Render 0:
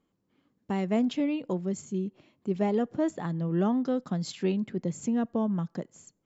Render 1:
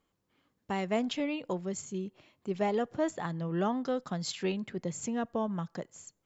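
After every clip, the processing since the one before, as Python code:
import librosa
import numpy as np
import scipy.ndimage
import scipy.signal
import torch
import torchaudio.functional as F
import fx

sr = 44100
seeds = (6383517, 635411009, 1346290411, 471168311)

y = fx.peak_eq(x, sr, hz=230.0, db=-10.0, octaves=2.0)
y = y * 10.0 ** (3.0 / 20.0)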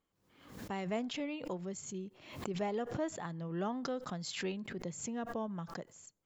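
y = fx.pre_swell(x, sr, db_per_s=78.0)
y = y * 10.0 ** (-6.5 / 20.0)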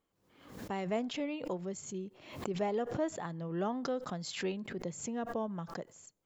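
y = fx.peak_eq(x, sr, hz=510.0, db=3.5, octaves=1.9)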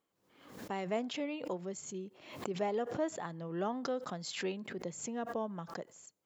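y = fx.highpass(x, sr, hz=200.0, slope=6)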